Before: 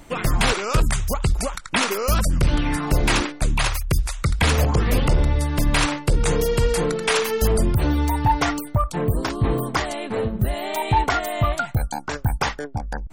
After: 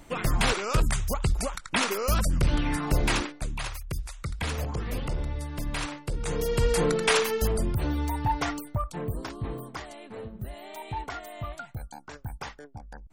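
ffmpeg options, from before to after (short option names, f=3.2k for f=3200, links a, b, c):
-af "volume=6.5dB,afade=t=out:st=3:d=0.5:silence=0.421697,afade=t=in:st=6.21:d=0.78:silence=0.266073,afade=t=out:st=6.99:d=0.54:silence=0.446684,afade=t=out:st=8.55:d=1.19:silence=0.421697"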